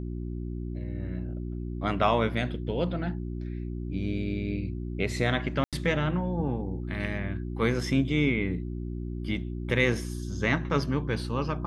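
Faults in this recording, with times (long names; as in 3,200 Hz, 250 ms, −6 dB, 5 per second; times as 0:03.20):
mains hum 60 Hz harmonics 6 −34 dBFS
0:05.64–0:05.73: drop-out 87 ms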